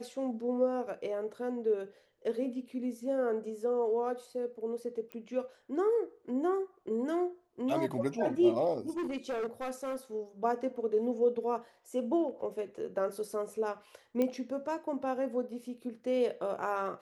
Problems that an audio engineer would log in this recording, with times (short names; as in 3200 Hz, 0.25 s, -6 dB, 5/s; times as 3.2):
5.12 pop -28 dBFS
8.89–9.97 clipped -31.5 dBFS
14.22 pop -19 dBFS